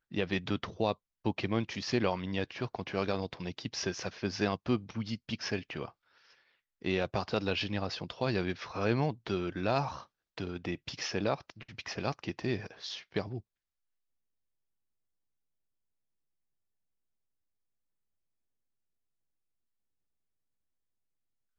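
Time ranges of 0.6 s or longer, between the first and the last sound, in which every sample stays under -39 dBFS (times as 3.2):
5.88–6.85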